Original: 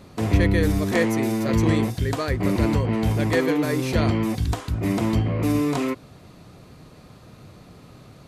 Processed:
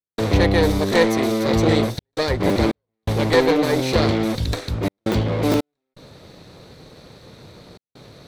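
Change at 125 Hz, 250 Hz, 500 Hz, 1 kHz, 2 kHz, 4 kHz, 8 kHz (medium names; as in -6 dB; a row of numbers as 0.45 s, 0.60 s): -0.5 dB, +1.0 dB, +6.0 dB, +4.5 dB, +3.0 dB, +8.0 dB, +2.5 dB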